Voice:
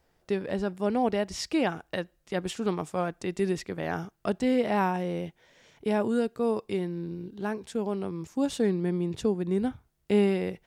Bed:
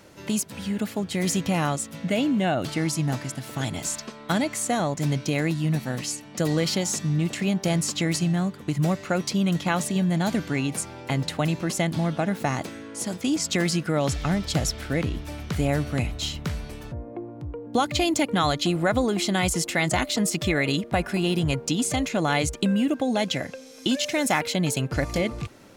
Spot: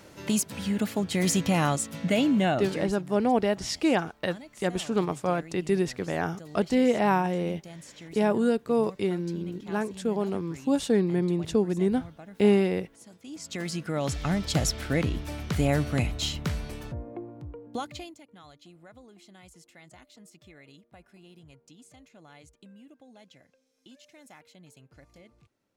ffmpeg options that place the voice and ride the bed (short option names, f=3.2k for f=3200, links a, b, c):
-filter_complex "[0:a]adelay=2300,volume=2.5dB[a];[1:a]volume=20.5dB,afade=t=out:st=2.42:d=0.55:silence=0.0891251,afade=t=in:st=13.24:d=1.43:silence=0.0944061,afade=t=out:st=16.77:d=1.39:silence=0.0375837[b];[a][b]amix=inputs=2:normalize=0"